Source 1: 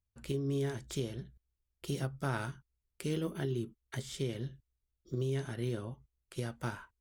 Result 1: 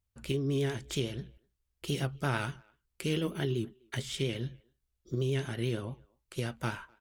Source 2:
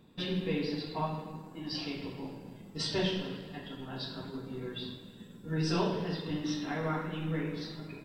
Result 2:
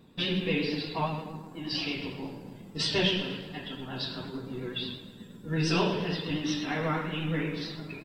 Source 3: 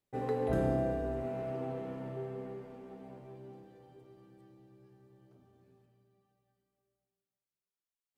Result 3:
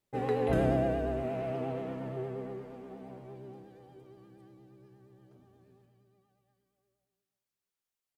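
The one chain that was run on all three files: dynamic EQ 2700 Hz, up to +8 dB, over -58 dBFS, Q 1.6; vibrato 8.5 Hz 52 cents; speakerphone echo 0.25 s, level -28 dB; gain +3 dB

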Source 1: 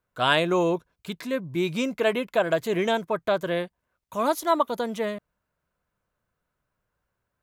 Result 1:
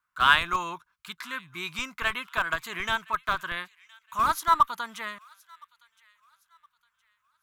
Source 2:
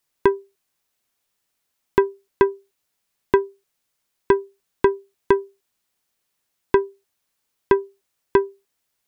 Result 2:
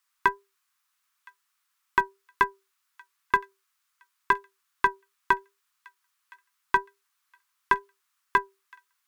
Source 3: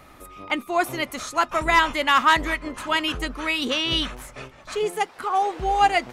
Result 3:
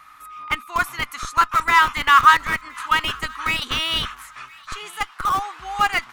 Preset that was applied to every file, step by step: resonant low shelf 790 Hz -14 dB, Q 3; in parallel at -7.5 dB: Schmitt trigger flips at -19.5 dBFS; on the sum: wow and flutter 22 cents; thin delay 1.016 s, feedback 33%, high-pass 1700 Hz, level -22.5 dB; gain -1 dB

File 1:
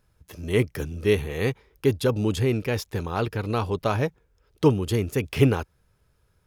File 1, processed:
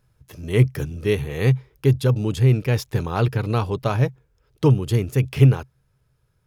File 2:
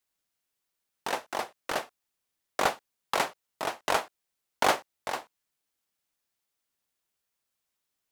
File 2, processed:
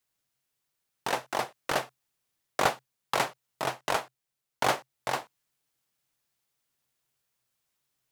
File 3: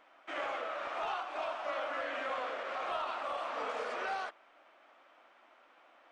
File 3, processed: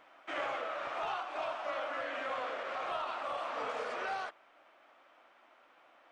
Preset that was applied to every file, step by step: vocal rider within 3 dB 0.5 s; bell 130 Hz +13.5 dB 0.28 oct

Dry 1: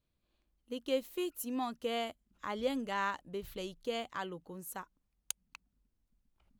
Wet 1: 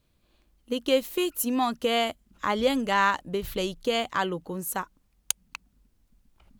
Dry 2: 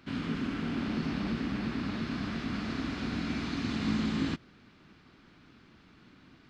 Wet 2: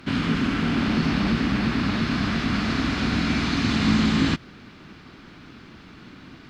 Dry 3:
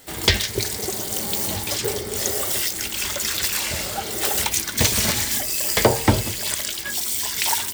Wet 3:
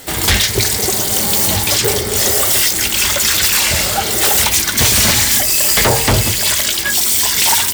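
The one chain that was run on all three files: dynamic EQ 350 Hz, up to -4 dB, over -39 dBFS, Q 0.7; in parallel at -6 dB: sine folder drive 17 dB, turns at 0 dBFS; on the sum: gain -3.5 dB

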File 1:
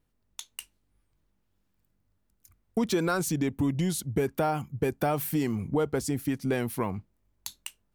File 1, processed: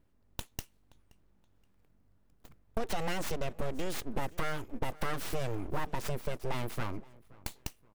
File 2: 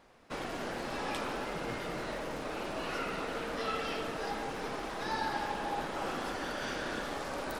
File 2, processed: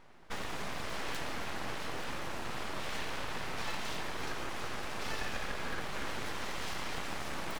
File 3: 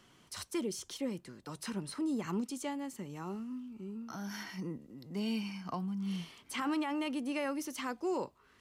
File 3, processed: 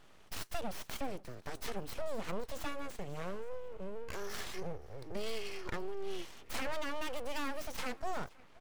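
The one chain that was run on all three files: tracing distortion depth 0.079 ms; compressor 2:1, threshold -43 dBFS; on a send: feedback echo 0.524 s, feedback 30%, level -22 dB; on the sum: full-wave rectifier; mismatched tape noise reduction decoder only; gain +6.5 dB

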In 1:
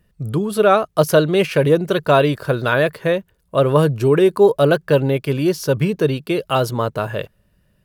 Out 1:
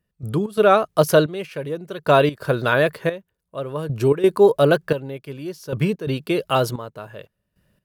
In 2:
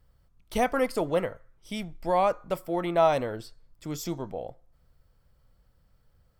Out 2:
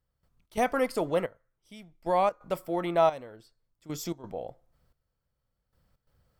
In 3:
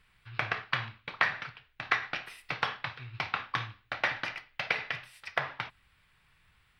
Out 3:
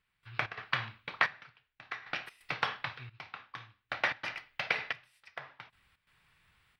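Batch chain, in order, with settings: low shelf 62 Hz -8.5 dB; step gate "..xx.xxxxxx....." 131 bpm -12 dB; gain -1 dB

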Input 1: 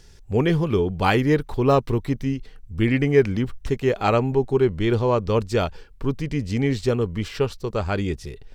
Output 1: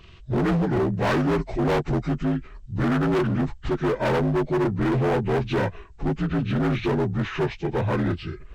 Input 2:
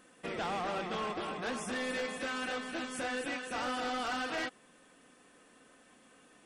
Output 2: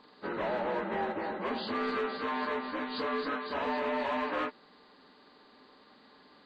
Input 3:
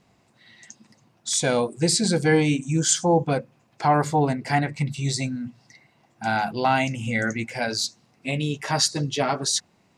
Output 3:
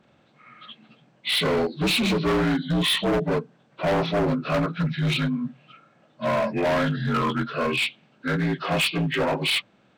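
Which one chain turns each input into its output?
inharmonic rescaling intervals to 79%; overloaded stage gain 24 dB; gain +4.5 dB

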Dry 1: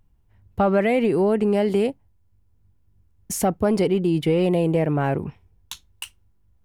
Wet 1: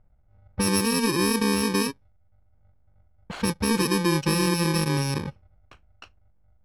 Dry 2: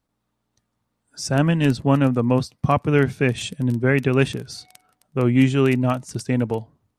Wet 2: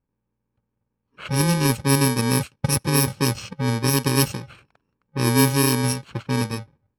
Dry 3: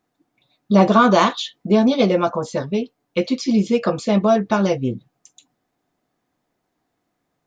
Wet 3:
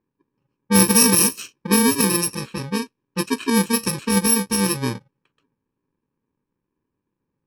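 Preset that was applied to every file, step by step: FFT order left unsorted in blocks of 64 samples; low-pass opened by the level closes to 2000 Hz, open at -12 dBFS; mismatched tape noise reduction decoder only

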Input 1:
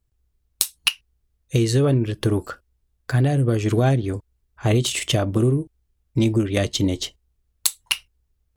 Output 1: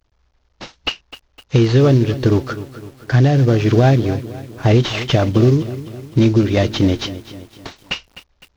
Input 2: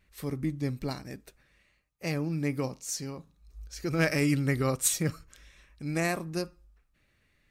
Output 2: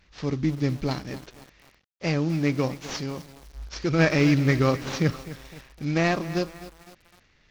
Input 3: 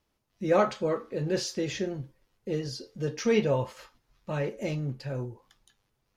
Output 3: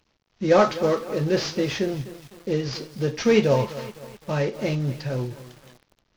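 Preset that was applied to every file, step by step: CVSD 32 kbps; lo-fi delay 0.255 s, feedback 55%, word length 7-bit, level -14.5 dB; gain +6.5 dB

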